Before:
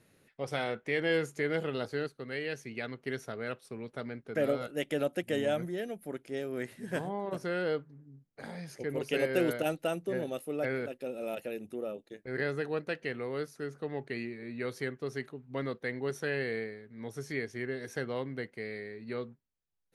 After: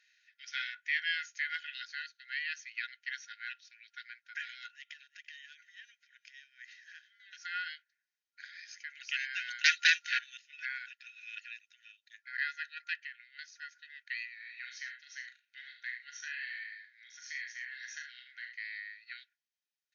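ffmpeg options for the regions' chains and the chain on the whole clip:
ffmpeg -i in.wav -filter_complex "[0:a]asettb=1/sr,asplit=3[link_01][link_02][link_03];[link_01]atrim=end=4.744[link_04];[link_02]atrim=start=4.74:end=7.2,asetpts=PTS-STARTPTS,afade=type=in:duration=0.004:curve=qsin,afade=type=out:start_time=2.456:duration=0.004:curve=qsin,asoftclip=type=hard:threshold=-23dB,acompressor=threshold=-42dB:ratio=5:attack=3.2:release=140:knee=1:detection=peak,aecho=1:1:338:0.0891,atrim=end_sample=108486[link_05];[link_03]atrim=start=7.196[link_06];[link_04][link_05]acrossfade=duration=0.004:curve1=hsin:curve2=qsin[link_07];[link_07][link_06]acrossfade=duration=0.004:curve1=qsin:curve2=hsin,asettb=1/sr,asplit=3[link_08][link_09][link_10];[link_08]atrim=end=9.644[link_11];[link_09]atrim=start=9.64:end=10.19,asetpts=PTS-STARTPTS,afade=type=in:duration=0.004:curve=qsin,afade=type=out:start_time=0.546:duration=0.004:curve=qsin,highpass=95,aeval=exprs='0.133*sin(PI/2*4.47*val(0)/0.133)':channel_layout=same[link_12];[link_10]atrim=start=10.186[link_13];[link_11][link_12]acrossfade=duration=0.004:curve1=hsin:curve2=qsin[link_14];[link_14][link_13]acrossfade=duration=0.004:curve1=qsin:curve2=hsin,asettb=1/sr,asplit=3[link_15][link_16][link_17];[link_15]atrim=end=12.944[link_18];[link_16]atrim=start=12.94:end=13.39,asetpts=PTS-STARTPTS,afade=type=in:duration=0.004:curve=qsin,afade=type=out:start_time=0.446:duration=0.004:curve=qsin,bass=frequency=250:gain=14,treble=frequency=4000:gain=-6,acompressor=threshold=-34dB:ratio=10:attack=3.2:release=140:knee=1:detection=peak[link_19];[link_17]atrim=start=13.386[link_20];[link_18][link_19]acrossfade=duration=0.004:curve1=hsin:curve2=qsin[link_21];[link_21][link_20]acrossfade=duration=0.004:curve1=qsin:curve2=hsin,asettb=1/sr,asplit=3[link_22][link_23][link_24];[link_22]atrim=end=14.334[link_25];[link_23]atrim=start=14.33:end=18.56,asetpts=PTS-STARTPTS,afade=type=in:duration=0.004:curve=qsin,afade=type=out:start_time=4.226:duration=0.004:curve=qsin,acompressor=threshold=-36dB:ratio=3:attack=3.2:release=140:knee=1:detection=peak,aecho=1:1:40|74|107:0.473|0.398|0.168,atrim=end_sample=186543[link_26];[link_24]atrim=start=18.556[link_27];[link_25][link_26]acrossfade=duration=0.004:curve1=hsin:curve2=qsin[link_28];[link_28][link_27]acrossfade=duration=0.004:curve1=qsin:curve2=hsin,afftfilt=real='re*between(b*sr/4096,1400,6800)':imag='im*between(b*sr/4096,1400,6800)':win_size=4096:overlap=0.75,aecho=1:1:1.6:0.38,volume=2.5dB" out.wav

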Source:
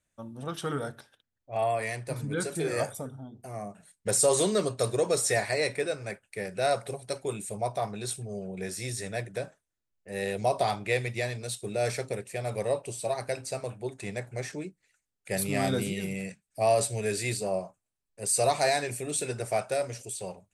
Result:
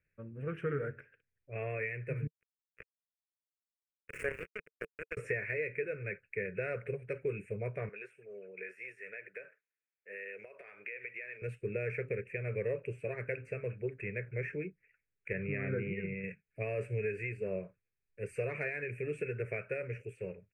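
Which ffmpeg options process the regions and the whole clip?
ffmpeg -i in.wav -filter_complex "[0:a]asettb=1/sr,asplit=3[link_01][link_02][link_03];[link_01]atrim=end=2.274[link_04];[link_02]atrim=start=2.27:end=5.17,asetpts=PTS-STARTPTS,afade=type=in:duration=0.004:curve=qsin,afade=type=out:start_time=2.896:duration=0.004:curve=qsin,highpass=380,highshelf=frequency=5600:gain=3.5,acrusher=bits=2:mix=0:aa=0.5[link_05];[link_03]atrim=start=5.166[link_06];[link_04][link_05]acrossfade=duration=0.004:curve1=hsin:curve2=qsin[link_07];[link_07][link_06]acrossfade=duration=0.004:curve1=qsin:curve2=hsin,asettb=1/sr,asplit=3[link_08][link_09][link_10];[link_08]atrim=end=7.894[link_11];[link_09]atrim=start=7.89:end=11.42,asetpts=PTS-STARTPTS,afade=type=in:duration=0.004:curve=qsin,afade=type=out:start_time=3.526:duration=0.004:curve=qsin,highpass=650,acompressor=threshold=-39dB:ratio=12:attack=3.2:release=140:knee=1:detection=peak[link_12];[link_10]atrim=start=11.416[link_13];[link_11][link_12]acrossfade=duration=0.004:curve1=hsin:curve2=qsin[link_14];[link_14][link_13]acrossfade=duration=0.004:curve1=qsin:curve2=hsin,asettb=1/sr,asplit=3[link_15][link_16][link_17];[link_15]atrim=end=15.334[link_18];[link_16]atrim=start=15.33:end=16.24,asetpts=PTS-STARTPTS,afade=type=in:duration=0.004:curve=qsin,afade=type=out:start_time=0.906:duration=0.004:curve=qsin,agate=range=-33dB:threshold=-31dB:ratio=3:release=100:detection=peak,lowpass=frequency=2600:width=0.5412,lowpass=frequency=2600:width=1.3066[link_19];[link_17]atrim=start=16.236[link_20];[link_18][link_19]acrossfade=duration=0.004:curve1=hsin:curve2=qsin[link_21];[link_21][link_20]acrossfade=duration=0.004:curve1=qsin:curve2=hsin,firequalizer=gain_entry='entry(160,0);entry(250,-10);entry(450,3);entry(760,-26);entry(2500,15);entry(3800,-19)':delay=0.05:min_phase=1,acompressor=threshold=-30dB:ratio=6,highshelf=frequency=2300:width_type=q:width=3:gain=-13.5" out.wav

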